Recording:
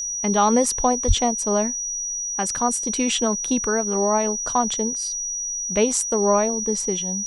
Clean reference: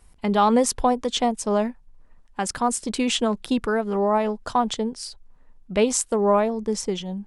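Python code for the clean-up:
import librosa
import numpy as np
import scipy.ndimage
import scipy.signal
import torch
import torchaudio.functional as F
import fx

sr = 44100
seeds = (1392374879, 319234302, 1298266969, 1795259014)

y = fx.notch(x, sr, hz=5800.0, q=30.0)
y = fx.fix_deplosive(y, sr, at_s=(1.07,))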